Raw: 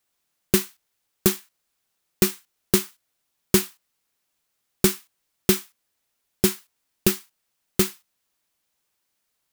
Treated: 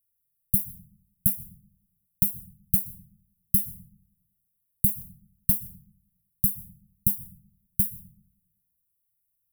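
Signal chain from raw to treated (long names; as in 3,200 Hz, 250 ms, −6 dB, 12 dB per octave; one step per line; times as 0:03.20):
inverse Chebyshev band-stop filter 360–5,300 Hz, stop band 50 dB
dense smooth reverb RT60 1 s, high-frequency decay 0.35×, pre-delay 110 ms, DRR 16.5 dB
level +2.5 dB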